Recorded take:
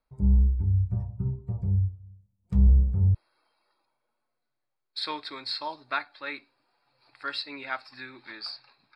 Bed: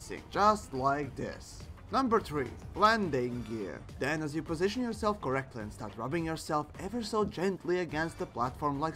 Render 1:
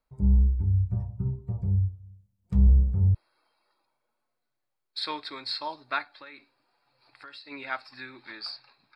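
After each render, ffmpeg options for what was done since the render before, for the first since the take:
ffmpeg -i in.wav -filter_complex "[0:a]asplit=3[link_01][link_02][link_03];[link_01]afade=type=out:start_time=6.14:duration=0.02[link_04];[link_02]acompressor=threshold=-42dB:ratio=8:attack=3.2:release=140:knee=1:detection=peak,afade=type=in:start_time=6.14:duration=0.02,afade=type=out:start_time=7.5:duration=0.02[link_05];[link_03]afade=type=in:start_time=7.5:duration=0.02[link_06];[link_04][link_05][link_06]amix=inputs=3:normalize=0" out.wav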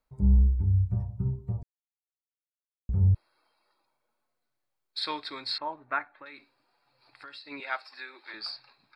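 ffmpeg -i in.wav -filter_complex "[0:a]asettb=1/sr,asplit=3[link_01][link_02][link_03];[link_01]atrim=end=5.584[link_04];[link_02]atrim=start=5.58:end=6.26,asetpts=PTS-STARTPTS,afade=type=in:duration=0.004:curve=qsin,afade=type=out:start_time=0.676:duration=0.004:curve=qsin,lowpass=frequency=2100:width=0.5412,lowpass=frequency=2100:width=1.3066[link_05];[link_03]atrim=start=6.256[link_06];[link_04][link_05]acrossfade=duration=0.004:curve1=hsin:curve2=qsin[link_07];[link_07][link_06]acrossfade=duration=0.004:curve1=qsin:curve2=hsin,asettb=1/sr,asplit=3[link_08][link_09][link_10];[link_08]atrim=end=7.604[link_11];[link_09]atrim=start=7.6:end=8.34,asetpts=PTS-STARTPTS,afade=type=in:duration=0.004:curve=qsin,afade=type=out:start_time=0.736:duration=0.004:curve=qsin,highpass=frequency=390:width=0.5412,highpass=frequency=390:width=1.3066[link_12];[link_10]atrim=start=8.336[link_13];[link_11][link_12]acrossfade=duration=0.004:curve1=hsin:curve2=qsin[link_14];[link_14][link_13]acrossfade=duration=0.004:curve1=qsin:curve2=hsin,asplit=3[link_15][link_16][link_17];[link_15]atrim=end=1.63,asetpts=PTS-STARTPTS,afade=type=out:start_time=1.626:duration=0.004:curve=hsin[link_18];[link_16]atrim=start=1.63:end=2.89,asetpts=PTS-STARTPTS,volume=0[link_19];[link_17]atrim=start=2.89,asetpts=PTS-STARTPTS,afade=type=in:duration=0.004:curve=hsin[link_20];[link_18][link_19][link_20]concat=n=3:v=0:a=1" out.wav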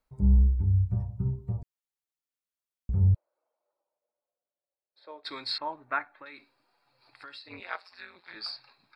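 ffmpeg -i in.wav -filter_complex "[0:a]asplit=3[link_01][link_02][link_03];[link_01]afade=type=out:start_time=3.14:duration=0.02[link_04];[link_02]bandpass=frequency=570:width_type=q:width=4.2,afade=type=in:start_time=3.14:duration=0.02,afade=type=out:start_time=5.24:duration=0.02[link_05];[link_03]afade=type=in:start_time=5.24:duration=0.02[link_06];[link_04][link_05][link_06]amix=inputs=3:normalize=0,asplit=3[link_07][link_08][link_09];[link_07]afade=type=out:start_time=7.46:duration=0.02[link_10];[link_08]tremolo=f=180:d=0.947,afade=type=in:start_time=7.46:duration=0.02,afade=type=out:start_time=8.35:duration=0.02[link_11];[link_09]afade=type=in:start_time=8.35:duration=0.02[link_12];[link_10][link_11][link_12]amix=inputs=3:normalize=0" out.wav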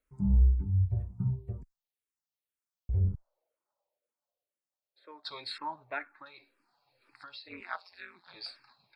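ffmpeg -i in.wav -filter_complex "[0:a]asplit=2[link_01][link_02];[link_02]afreqshift=-2[link_03];[link_01][link_03]amix=inputs=2:normalize=1" out.wav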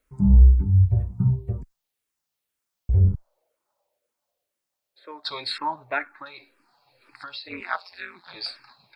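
ffmpeg -i in.wav -af "volume=10dB" out.wav

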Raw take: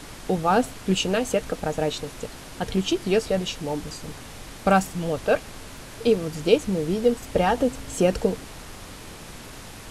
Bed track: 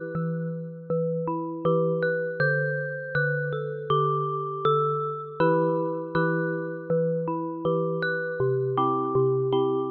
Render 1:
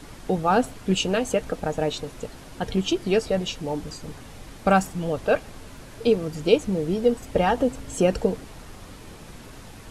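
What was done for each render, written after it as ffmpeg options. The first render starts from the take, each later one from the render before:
ffmpeg -i in.wav -af "afftdn=noise_reduction=6:noise_floor=-41" out.wav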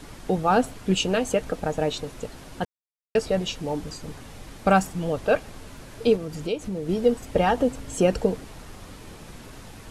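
ffmpeg -i in.wav -filter_complex "[0:a]asettb=1/sr,asplit=3[link_01][link_02][link_03];[link_01]atrim=end=6.164[link_04];[link_02]atrim=start=6.16:end=6.89,asetpts=PTS-STARTPTS,afade=type=in:duration=0.004:curve=qsin,afade=type=out:start_time=0.726:duration=0.004:curve=qsin,acompressor=threshold=-30dB:ratio=2:attack=3.2:release=140:knee=1:detection=peak[link_05];[link_03]atrim=start=6.886[link_06];[link_04][link_05]acrossfade=duration=0.004:curve1=hsin:curve2=qsin[link_07];[link_07][link_06]acrossfade=duration=0.004:curve1=qsin:curve2=hsin,asplit=3[link_08][link_09][link_10];[link_08]atrim=end=2.65,asetpts=PTS-STARTPTS,afade=type=out:start_time=2.646:duration=0.004:curve=hsin[link_11];[link_09]atrim=start=2.65:end=3.15,asetpts=PTS-STARTPTS,volume=0[link_12];[link_10]atrim=start=3.15,asetpts=PTS-STARTPTS,afade=type=in:duration=0.004:curve=hsin[link_13];[link_11][link_12][link_13]concat=n=3:v=0:a=1" out.wav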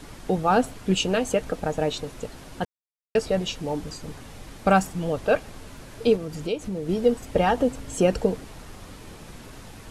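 ffmpeg -i in.wav -af anull out.wav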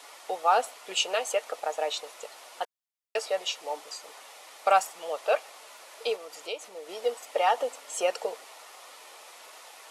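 ffmpeg -i in.wav -af "highpass=frequency=590:width=0.5412,highpass=frequency=590:width=1.3066,bandreject=frequency=1600:width=8.3" out.wav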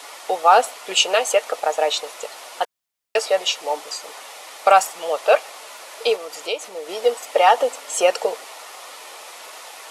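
ffmpeg -i in.wav -af "volume=10dB,alimiter=limit=-2dB:level=0:latency=1" out.wav

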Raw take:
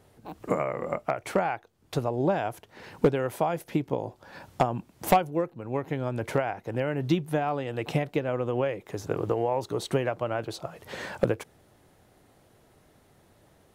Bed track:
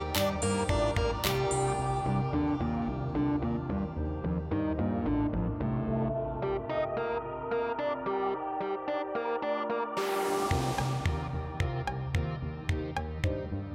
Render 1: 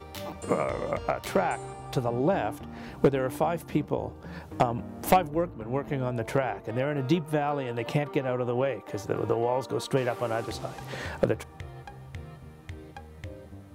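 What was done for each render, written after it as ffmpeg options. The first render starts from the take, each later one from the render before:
ffmpeg -i in.wav -i bed.wav -filter_complex "[1:a]volume=-10.5dB[link_01];[0:a][link_01]amix=inputs=2:normalize=0" out.wav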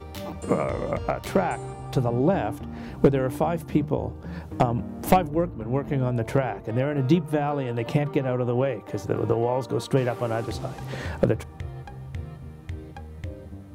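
ffmpeg -i in.wav -af "lowshelf=frequency=320:gain=8.5,bandreject=frequency=50:width_type=h:width=6,bandreject=frequency=100:width_type=h:width=6,bandreject=frequency=150:width_type=h:width=6" out.wav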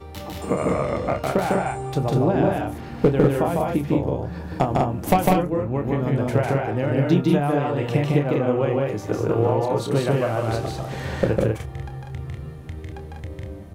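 ffmpeg -i in.wav -filter_complex "[0:a]asplit=2[link_01][link_02];[link_02]adelay=28,volume=-9dB[link_03];[link_01][link_03]amix=inputs=2:normalize=0,aecho=1:1:151.6|195.3:0.794|0.708" out.wav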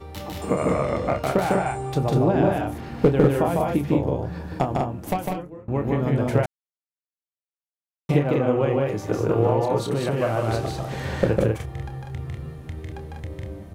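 ffmpeg -i in.wav -filter_complex "[0:a]asettb=1/sr,asplit=3[link_01][link_02][link_03];[link_01]atrim=end=9.784[link_04];[link_02]atrim=start=9.78:end=10.21,asetpts=PTS-STARTPTS,afade=type=in:duration=0.004:curve=qsin,afade=type=out:start_time=0.426:duration=0.004:curve=qsin,acompressor=threshold=-19dB:ratio=6:attack=3.2:release=140:knee=1:detection=peak[link_05];[link_03]atrim=start=10.206[link_06];[link_04][link_05]acrossfade=duration=0.004:curve1=hsin:curve2=qsin[link_07];[link_07][link_06]acrossfade=duration=0.004:curve1=qsin:curve2=hsin,asplit=4[link_08][link_09][link_10][link_11];[link_08]atrim=end=5.68,asetpts=PTS-STARTPTS,afade=type=out:start_time=4.28:duration=1.4:silence=0.0668344[link_12];[link_09]atrim=start=5.68:end=6.46,asetpts=PTS-STARTPTS,afade=type=in:duration=0.004:curve=hsin:silence=0.0668344,afade=type=out:start_time=0.776:duration=0.004:curve=hsin[link_13];[link_10]atrim=start=6.46:end=8.09,asetpts=PTS-STARTPTS,volume=0[link_14];[link_11]atrim=start=8.09,asetpts=PTS-STARTPTS,afade=type=in:duration=0.004:curve=hsin[link_15];[link_12][link_13][link_14][link_15]concat=n=4:v=0:a=1" out.wav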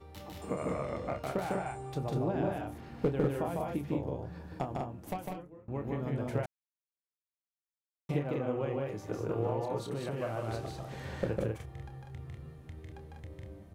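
ffmpeg -i in.wav -af "volume=-12.5dB" out.wav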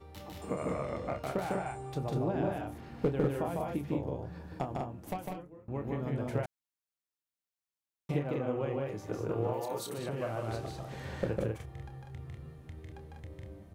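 ffmpeg -i in.wav -filter_complex "[0:a]asplit=3[link_01][link_02][link_03];[link_01]afade=type=out:start_time=9.52:duration=0.02[link_04];[link_02]aemphasis=mode=production:type=bsi,afade=type=in:start_time=9.52:duration=0.02,afade=type=out:start_time=9.97:duration=0.02[link_05];[link_03]afade=type=in:start_time=9.97:duration=0.02[link_06];[link_04][link_05][link_06]amix=inputs=3:normalize=0" out.wav

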